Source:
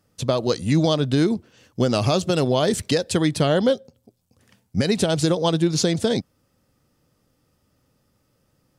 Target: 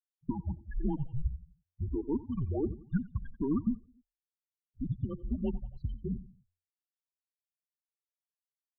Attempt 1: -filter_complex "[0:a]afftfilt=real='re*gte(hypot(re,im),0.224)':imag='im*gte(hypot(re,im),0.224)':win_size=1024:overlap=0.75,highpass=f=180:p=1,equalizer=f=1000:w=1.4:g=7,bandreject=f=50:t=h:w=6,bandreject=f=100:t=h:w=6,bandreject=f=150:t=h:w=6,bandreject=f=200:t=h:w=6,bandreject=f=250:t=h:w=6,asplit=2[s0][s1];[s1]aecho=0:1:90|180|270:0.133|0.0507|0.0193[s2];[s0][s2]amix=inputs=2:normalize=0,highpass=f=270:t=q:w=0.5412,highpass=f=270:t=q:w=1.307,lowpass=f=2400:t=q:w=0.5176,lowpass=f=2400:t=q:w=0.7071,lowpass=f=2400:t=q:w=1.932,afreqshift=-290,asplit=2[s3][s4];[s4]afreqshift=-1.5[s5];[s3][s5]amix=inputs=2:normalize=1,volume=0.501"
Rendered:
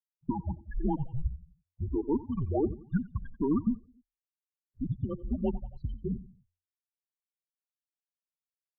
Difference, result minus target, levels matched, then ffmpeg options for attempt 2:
1 kHz band +5.5 dB
-filter_complex "[0:a]afftfilt=real='re*gte(hypot(re,im),0.224)':imag='im*gte(hypot(re,im),0.224)':win_size=1024:overlap=0.75,highpass=f=180:p=1,equalizer=f=1000:w=1.4:g=-3,bandreject=f=50:t=h:w=6,bandreject=f=100:t=h:w=6,bandreject=f=150:t=h:w=6,bandreject=f=200:t=h:w=6,bandreject=f=250:t=h:w=6,asplit=2[s0][s1];[s1]aecho=0:1:90|180|270:0.133|0.0507|0.0193[s2];[s0][s2]amix=inputs=2:normalize=0,highpass=f=270:t=q:w=0.5412,highpass=f=270:t=q:w=1.307,lowpass=f=2400:t=q:w=0.5176,lowpass=f=2400:t=q:w=0.7071,lowpass=f=2400:t=q:w=1.932,afreqshift=-290,asplit=2[s3][s4];[s4]afreqshift=-1.5[s5];[s3][s5]amix=inputs=2:normalize=1,volume=0.501"

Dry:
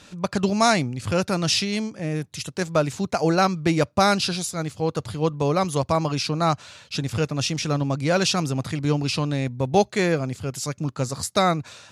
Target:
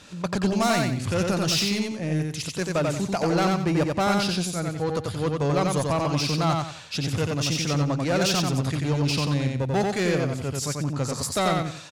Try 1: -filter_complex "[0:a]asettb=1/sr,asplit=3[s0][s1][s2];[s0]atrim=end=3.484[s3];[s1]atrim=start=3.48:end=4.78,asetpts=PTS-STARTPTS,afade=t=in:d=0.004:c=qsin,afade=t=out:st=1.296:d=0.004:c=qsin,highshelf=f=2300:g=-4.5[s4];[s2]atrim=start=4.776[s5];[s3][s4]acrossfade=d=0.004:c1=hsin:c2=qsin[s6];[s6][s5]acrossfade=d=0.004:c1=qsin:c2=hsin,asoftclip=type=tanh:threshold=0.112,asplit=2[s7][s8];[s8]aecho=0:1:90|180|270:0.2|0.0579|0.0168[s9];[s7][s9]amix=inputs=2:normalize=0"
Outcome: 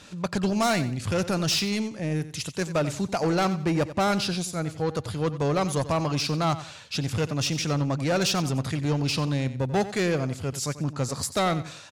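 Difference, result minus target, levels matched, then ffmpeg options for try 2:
echo-to-direct -11 dB
-filter_complex "[0:a]asettb=1/sr,asplit=3[s0][s1][s2];[s0]atrim=end=3.484[s3];[s1]atrim=start=3.48:end=4.78,asetpts=PTS-STARTPTS,afade=t=in:d=0.004:c=qsin,afade=t=out:st=1.296:d=0.004:c=qsin,highshelf=f=2300:g=-4.5[s4];[s2]atrim=start=4.776[s5];[s3][s4]acrossfade=d=0.004:c1=hsin:c2=qsin[s6];[s6][s5]acrossfade=d=0.004:c1=qsin:c2=hsin,asoftclip=type=tanh:threshold=0.112,asplit=2[s7][s8];[s8]aecho=0:1:90|180|270|360:0.708|0.205|0.0595|0.0173[s9];[s7][s9]amix=inputs=2:normalize=0"

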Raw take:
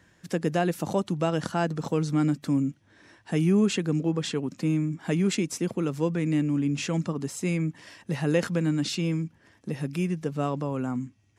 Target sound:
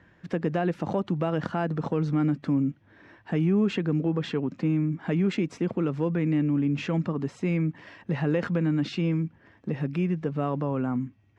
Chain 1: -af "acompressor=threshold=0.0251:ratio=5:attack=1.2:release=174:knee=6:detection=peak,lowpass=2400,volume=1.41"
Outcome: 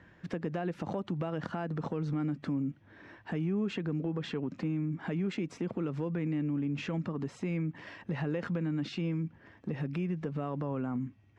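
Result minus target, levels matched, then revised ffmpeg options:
compression: peak gain reduction +9 dB
-af "acompressor=threshold=0.0891:ratio=5:attack=1.2:release=174:knee=6:detection=peak,lowpass=2400,volume=1.41"

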